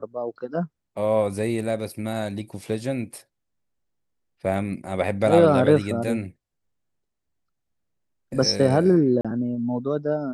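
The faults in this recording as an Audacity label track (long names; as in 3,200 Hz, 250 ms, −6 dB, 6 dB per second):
9.210000	9.250000	drop-out 36 ms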